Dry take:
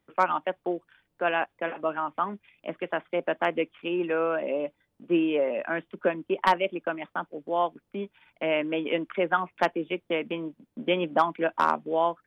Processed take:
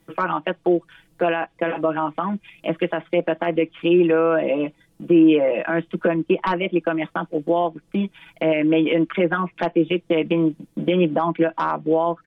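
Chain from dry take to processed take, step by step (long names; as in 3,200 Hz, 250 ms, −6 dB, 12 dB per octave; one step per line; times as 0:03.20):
treble cut that deepens with the level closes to 2,400 Hz, closed at −20.5 dBFS
high-shelf EQ 3,700 Hz +12 dB
in parallel at +1 dB: downward compressor, threshold −34 dBFS, peak gain reduction 17.5 dB
on the sum: comb filter 6.1 ms, depth 88%
brickwall limiter −13.5 dBFS, peak gain reduction 10.5 dB
low-shelf EQ 430 Hz +9.5 dB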